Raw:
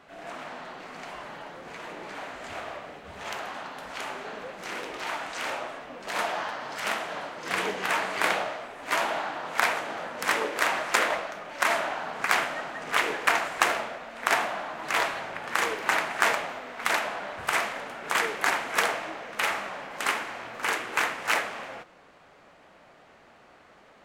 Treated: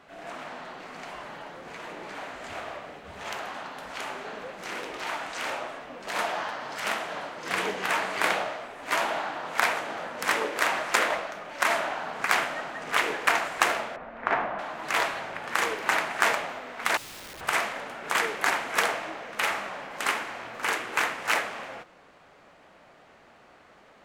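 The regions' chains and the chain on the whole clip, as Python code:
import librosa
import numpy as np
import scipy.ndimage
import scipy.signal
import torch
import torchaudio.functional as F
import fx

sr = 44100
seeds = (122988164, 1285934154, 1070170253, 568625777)

y = fx.chain(x, sr, fx.lowpass(hz=1700.0, slope=12),
    fx.low_shelf(hz=150.0, db=7.5), at=(13.96, 14.59))
y = fx.chain(y, sr, fx.lowpass(hz=1600.0, slope=24),
    fx.peak_eq(hz=1100.0, db=-4.5, octaves=1.3),
    fx.overflow_wrap(gain_db=38.0), at=(16.97, 17.41))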